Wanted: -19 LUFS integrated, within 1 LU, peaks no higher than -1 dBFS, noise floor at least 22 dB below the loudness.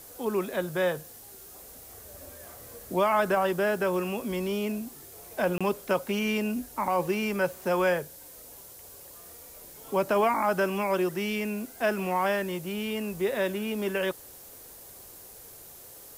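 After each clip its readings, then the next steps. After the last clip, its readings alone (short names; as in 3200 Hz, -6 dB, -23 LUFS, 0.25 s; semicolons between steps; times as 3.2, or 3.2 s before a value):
dropouts 1; longest dropout 26 ms; noise floor -48 dBFS; noise floor target -51 dBFS; loudness -28.5 LUFS; peak -15.5 dBFS; loudness target -19.0 LUFS
-> interpolate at 5.58, 26 ms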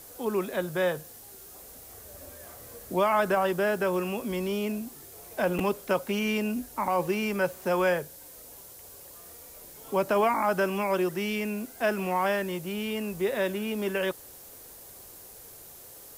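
dropouts 0; noise floor -48 dBFS; noise floor target -51 dBFS
-> denoiser 6 dB, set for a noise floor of -48 dBFS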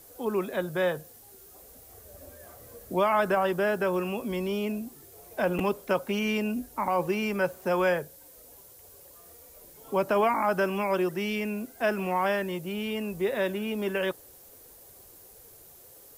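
noise floor -52 dBFS; loudness -28.5 LUFS; peak -15.5 dBFS; loudness target -19.0 LUFS
-> gain +9.5 dB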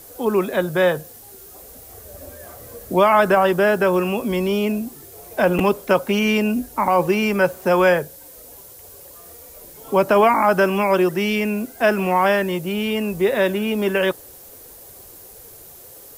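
loudness -19.0 LUFS; peak -6.0 dBFS; noise floor -43 dBFS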